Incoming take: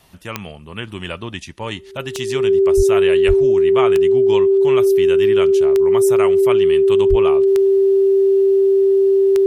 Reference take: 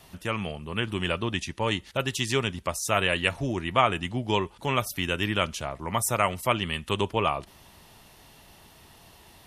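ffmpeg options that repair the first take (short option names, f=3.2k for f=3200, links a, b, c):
-filter_complex "[0:a]adeclick=t=4,bandreject=f=390:w=30,asplit=3[a][b][c];[a]afade=t=out:st=2.76:d=0.02[d];[b]highpass=f=140:w=0.5412,highpass=f=140:w=1.3066,afade=t=in:st=2.76:d=0.02,afade=t=out:st=2.88:d=0.02[e];[c]afade=t=in:st=2.88:d=0.02[f];[d][e][f]amix=inputs=3:normalize=0,asplit=3[g][h][i];[g]afade=t=out:st=3.27:d=0.02[j];[h]highpass=f=140:w=0.5412,highpass=f=140:w=1.3066,afade=t=in:st=3.27:d=0.02,afade=t=out:st=3.39:d=0.02[k];[i]afade=t=in:st=3.39:d=0.02[l];[j][k][l]amix=inputs=3:normalize=0,asplit=3[m][n][o];[m]afade=t=out:st=7.09:d=0.02[p];[n]highpass=f=140:w=0.5412,highpass=f=140:w=1.3066,afade=t=in:st=7.09:d=0.02,afade=t=out:st=7.21:d=0.02[q];[o]afade=t=in:st=7.21:d=0.02[r];[p][q][r]amix=inputs=3:normalize=0"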